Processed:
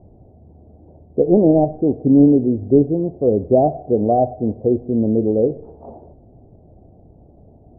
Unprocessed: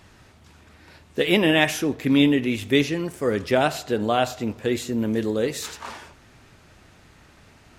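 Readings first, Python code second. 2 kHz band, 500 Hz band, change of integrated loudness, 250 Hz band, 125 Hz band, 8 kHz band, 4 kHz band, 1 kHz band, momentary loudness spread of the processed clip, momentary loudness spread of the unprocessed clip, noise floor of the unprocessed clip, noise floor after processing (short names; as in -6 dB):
under -40 dB, +7.0 dB, +6.0 dB, +7.0 dB, +7.0 dB, under -40 dB, under -40 dB, +4.0 dB, 8 LU, 13 LU, -53 dBFS, -48 dBFS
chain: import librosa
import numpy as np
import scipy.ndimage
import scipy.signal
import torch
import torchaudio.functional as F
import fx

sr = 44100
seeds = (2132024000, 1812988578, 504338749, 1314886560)

y = fx.tracing_dist(x, sr, depth_ms=0.022)
y = scipy.signal.sosfilt(scipy.signal.cheby1(5, 1.0, 730.0, 'lowpass', fs=sr, output='sos'), y)
y = y * 10.0 ** (7.5 / 20.0)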